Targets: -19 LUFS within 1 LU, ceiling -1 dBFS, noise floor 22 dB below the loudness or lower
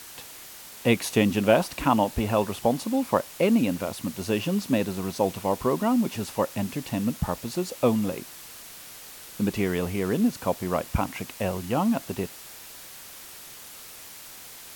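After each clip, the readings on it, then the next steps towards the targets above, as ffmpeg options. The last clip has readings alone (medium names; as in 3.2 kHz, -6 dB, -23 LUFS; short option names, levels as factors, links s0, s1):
noise floor -44 dBFS; noise floor target -48 dBFS; loudness -26.0 LUFS; peak level -4.5 dBFS; loudness target -19.0 LUFS
-> -af "afftdn=nr=6:nf=-44"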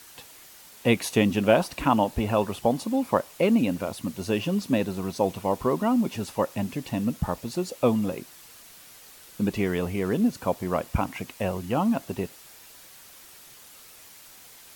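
noise floor -49 dBFS; loudness -26.0 LUFS; peak level -4.5 dBFS; loudness target -19.0 LUFS
-> -af "volume=2.24,alimiter=limit=0.891:level=0:latency=1"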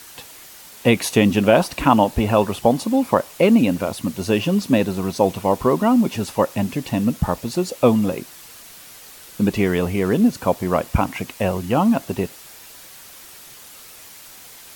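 loudness -19.5 LUFS; peak level -1.0 dBFS; noise floor -42 dBFS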